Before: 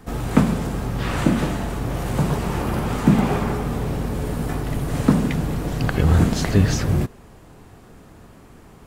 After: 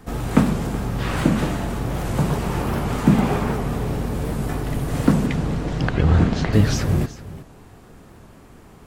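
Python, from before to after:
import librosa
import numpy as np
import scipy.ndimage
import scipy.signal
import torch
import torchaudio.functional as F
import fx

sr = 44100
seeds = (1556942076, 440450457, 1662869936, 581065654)

y = fx.lowpass(x, sr, hz=fx.line((5.26, 8400.0), (6.52, 3600.0)), slope=12, at=(5.26, 6.52), fade=0.02)
y = y + 10.0 ** (-16.5 / 20.0) * np.pad(y, (int(375 * sr / 1000.0), 0))[:len(y)]
y = fx.record_warp(y, sr, rpm=78.0, depth_cents=160.0)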